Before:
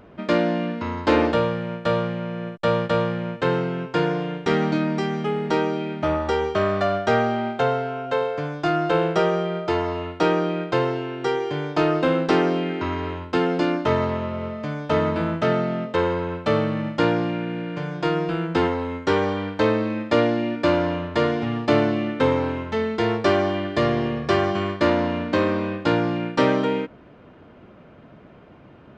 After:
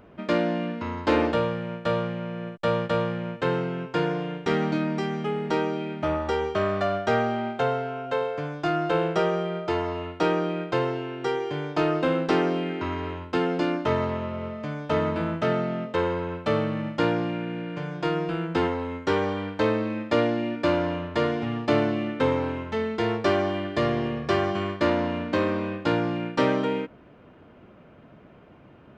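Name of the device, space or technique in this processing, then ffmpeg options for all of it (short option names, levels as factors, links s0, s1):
exciter from parts: -filter_complex "[0:a]asplit=2[s0][s1];[s1]highpass=f=2400:w=0.5412,highpass=f=2400:w=1.3066,asoftclip=type=tanh:threshold=0.0119,highpass=f=2600:w=0.5412,highpass=f=2600:w=1.3066,volume=0.211[s2];[s0][s2]amix=inputs=2:normalize=0,volume=0.668"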